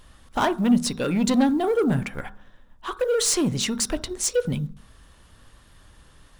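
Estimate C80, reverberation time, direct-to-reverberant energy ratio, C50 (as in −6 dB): 22.5 dB, 0.50 s, 11.0 dB, 18.5 dB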